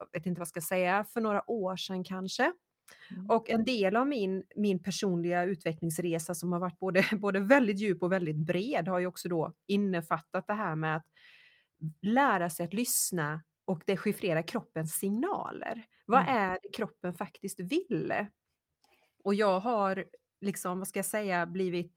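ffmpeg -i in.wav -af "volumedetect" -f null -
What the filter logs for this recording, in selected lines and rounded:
mean_volume: -31.7 dB
max_volume: -10.0 dB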